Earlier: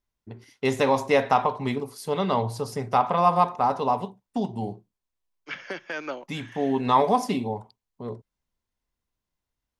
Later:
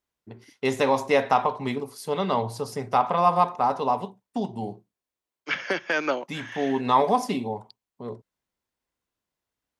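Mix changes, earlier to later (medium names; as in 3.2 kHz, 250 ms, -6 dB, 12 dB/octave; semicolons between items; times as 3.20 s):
second voice +8.0 dB; master: add high-pass 140 Hz 6 dB/octave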